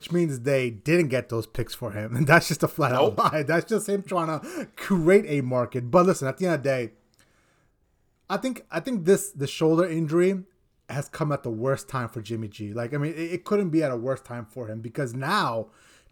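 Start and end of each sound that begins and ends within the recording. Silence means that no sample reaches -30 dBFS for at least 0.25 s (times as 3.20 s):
8.30–10.39 s
10.89–15.63 s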